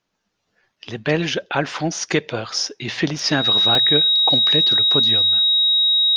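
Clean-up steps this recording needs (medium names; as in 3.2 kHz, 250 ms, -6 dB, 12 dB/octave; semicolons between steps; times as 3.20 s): band-stop 3.8 kHz, Q 30; interpolate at 0.76/3.19/3.75 s, 2.1 ms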